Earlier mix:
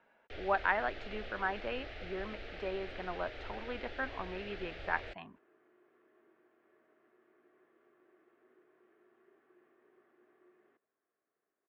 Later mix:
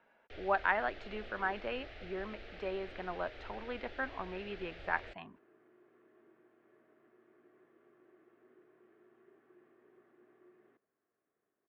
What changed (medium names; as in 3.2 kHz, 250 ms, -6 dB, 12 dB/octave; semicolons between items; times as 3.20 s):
first sound -4.0 dB; second sound: add bass shelf 230 Hz +11.5 dB